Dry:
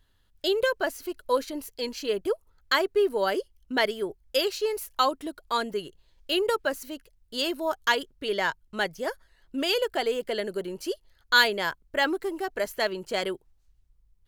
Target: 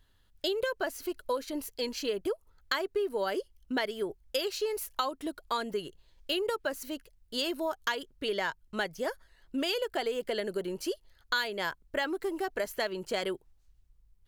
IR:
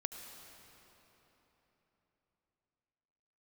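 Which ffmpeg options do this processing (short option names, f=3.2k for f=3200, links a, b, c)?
-af "acompressor=threshold=-28dB:ratio=5"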